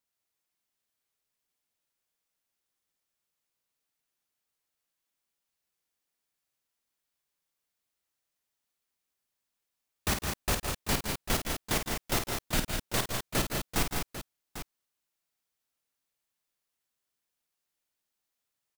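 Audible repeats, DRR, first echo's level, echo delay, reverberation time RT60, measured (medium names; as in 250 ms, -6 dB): 4, no reverb, -7.5 dB, 50 ms, no reverb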